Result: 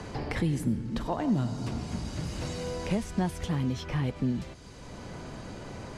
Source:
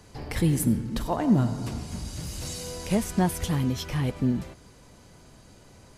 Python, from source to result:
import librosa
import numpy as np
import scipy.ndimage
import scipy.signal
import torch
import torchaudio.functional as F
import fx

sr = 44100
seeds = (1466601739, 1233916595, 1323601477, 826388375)

y = fx.air_absorb(x, sr, metres=62.0)
y = fx.band_squash(y, sr, depth_pct=70)
y = y * librosa.db_to_amplitude(-3.5)